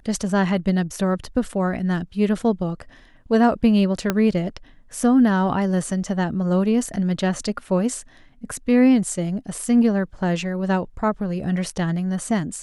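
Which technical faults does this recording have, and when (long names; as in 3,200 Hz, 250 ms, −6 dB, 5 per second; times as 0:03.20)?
0:04.10: click −6 dBFS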